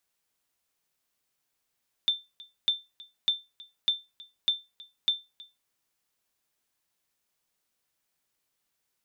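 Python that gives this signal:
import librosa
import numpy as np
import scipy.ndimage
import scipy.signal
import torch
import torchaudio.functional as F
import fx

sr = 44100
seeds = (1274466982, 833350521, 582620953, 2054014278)

y = fx.sonar_ping(sr, hz=3560.0, decay_s=0.23, every_s=0.6, pings=6, echo_s=0.32, echo_db=-22.0, level_db=-16.5)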